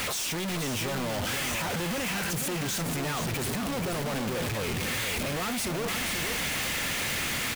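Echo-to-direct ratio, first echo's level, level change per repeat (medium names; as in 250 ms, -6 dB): -7.0 dB, -7.0 dB, no regular repeats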